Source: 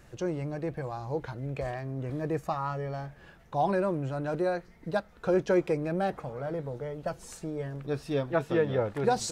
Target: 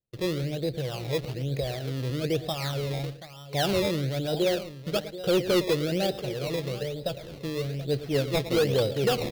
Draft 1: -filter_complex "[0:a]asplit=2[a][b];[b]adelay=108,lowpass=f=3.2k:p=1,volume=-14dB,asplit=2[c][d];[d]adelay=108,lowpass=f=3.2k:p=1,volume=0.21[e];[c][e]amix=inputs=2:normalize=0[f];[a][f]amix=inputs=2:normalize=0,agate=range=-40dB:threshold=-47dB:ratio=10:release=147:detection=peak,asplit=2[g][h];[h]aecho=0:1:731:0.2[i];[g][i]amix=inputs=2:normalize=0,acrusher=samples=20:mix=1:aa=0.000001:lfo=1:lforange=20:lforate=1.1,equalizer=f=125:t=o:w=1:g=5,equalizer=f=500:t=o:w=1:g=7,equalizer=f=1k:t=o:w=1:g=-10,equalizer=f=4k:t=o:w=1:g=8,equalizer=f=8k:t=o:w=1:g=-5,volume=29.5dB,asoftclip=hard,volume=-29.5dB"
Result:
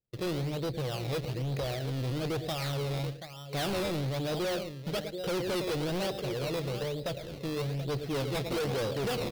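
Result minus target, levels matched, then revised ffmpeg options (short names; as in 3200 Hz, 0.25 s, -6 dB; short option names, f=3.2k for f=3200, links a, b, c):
overloaded stage: distortion +11 dB
-filter_complex "[0:a]asplit=2[a][b];[b]adelay=108,lowpass=f=3.2k:p=1,volume=-14dB,asplit=2[c][d];[d]adelay=108,lowpass=f=3.2k:p=1,volume=0.21[e];[c][e]amix=inputs=2:normalize=0[f];[a][f]amix=inputs=2:normalize=0,agate=range=-40dB:threshold=-47dB:ratio=10:release=147:detection=peak,asplit=2[g][h];[h]aecho=0:1:731:0.2[i];[g][i]amix=inputs=2:normalize=0,acrusher=samples=20:mix=1:aa=0.000001:lfo=1:lforange=20:lforate=1.1,equalizer=f=125:t=o:w=1:g=5,equalizer=f=500:t=o:w=1:g=7,equalizer=f=1k:t=o:w=1:g=-10,equalizer=f=4k:t=o:w=1:g=8,equalizer=f=8k:t=o:w=1:g=-5,volume=18.5dB,asoftclip=hard,volume=-18.5dB"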